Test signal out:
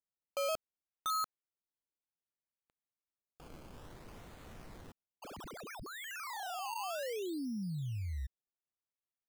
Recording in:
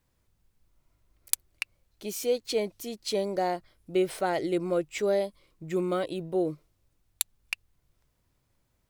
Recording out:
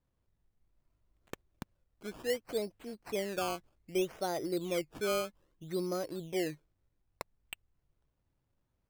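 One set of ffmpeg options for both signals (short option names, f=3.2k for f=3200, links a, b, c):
-af "highshelf=f=2.2k:g=-10.5,acrusher=samples=16:mix=1:aa=0.000001:lfo=1:lforange=16:lforate=0.63,volume=-6dB"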